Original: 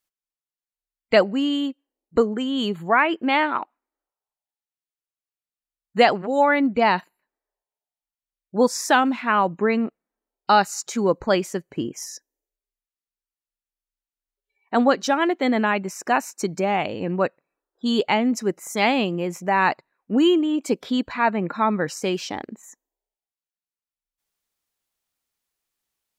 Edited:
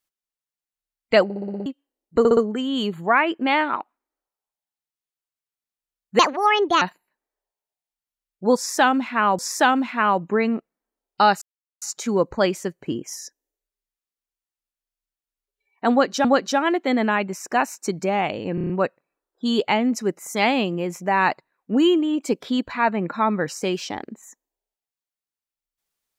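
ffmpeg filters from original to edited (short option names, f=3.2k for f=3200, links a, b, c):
-filter_complex "[0:a]asplit=21[a][b][c][d][e][f][g][h][i][j][k][l][m][n][o][p][q][r][s][t][u];[a]atrim=end=1.302[v];[b]atrim=start=1.238:end=1.302[w];[c]atrim=start=1.238:end=1.302[x];[d]atrim=start=1.238:end=1.302[y];[e]atrim=start=1.238:end=1.302[z];[f]atrim=start=1.238:end=1.302[aa];[g]atrim=start=1.238:end=1.302[ab];[h]atrim=start=1.658:end=2.252[ac];[i]atrim=start=2.188:end=2.252[ad];[j]atrim=start=2.188:end=2.252[ae];[k]atrim=start=2.188:end=6.014[af];[l]atrim=start=6.01:end=6.93,asetpts=PTS-STARTPTS,asetrate=64827,aresample=44100[ag];[m]atrim=start=6.926:end=9.502[ah];[n]atrim=start=8.678:end=10.71,asetpts=PTS-STARTPTS,afade=t=out:st=2.028:d=0.004:c=hsin,apad=pad_dur=0.4[ai];[o]atrim=start=10.71:end=15.142,asetpts=PTS-STARTPTS,afade=t=in:d=0.004:c=hsin[aj];[p]atrim=start=14.798:end=17.132[ak];[q]atrim=start=17.098:end=17.132[al];[r]atrim=start=17.098:end=17.132[am];[s]atrim=start=17.098:end=17.132[an];[t]atrim=start=17.098:end=17.132[ao];[u]atrim=start=17.098[ap];[v][w]acrossfade=d=0.004:c1=hsin:c2=hsin[aq];[aq][x]acrossfade=d=0.004:c1=hsin:c2=hsin[ar];[ar][y]acrossfade=d=0.004:c1=hsin:c2=hsin[as];[as][z]acrossfade=d=0.004:c1=hsin:c2=hsin[at];[at][aa]acrossfade=d=0.004:c1=hsin:c2=hsin[au];[au][ab]acrossfade=d=0.004:c1=hsin:c2=hsin[av];[av][ac]acrossfade=d=0.004:c1=hsin:c2=hsin[aw];[aw][ad]acrossfade=d=0.004:c1=hsin:c2=hsin[ax];[ax][ae]acrossfade=d=0.004:c1=hsin:c2=hsin[ay];[ay][af]acrossfade=d=0.004:c1=hsin:c2=hsin[az];[az][ag]acrossfade=d=0.004:c1=hsin:c2=hsin[ba];[ba][ah]acrossfade=d=0.004:c1=hsin:c2=hsin[bb];[ai][aj]concat=n=2:v=0:a=1[bc];[bb][bc]acrossfade=d=0.004:c1=hsin:c2=hsin[bd];[bd][ak]acrossfade=d=0.004:c1=hsin:c2=hsin[be];[be][al]acrossfade=d=0.004:c1=hsin:c2=hsin[bf];[bf][am]acrossfade=d=0.004:c1=hsin:c2=hsin[bg];[bg][an]acrossfade=d=0.004:c1=hsin:c2=hsin[bh];[bh][ao]acrossfade=d=0.004:c1=hsin:c2=hsin[bi];[bi][ap]acrossfade=d=0.004:c1=hsin:c2=hsin"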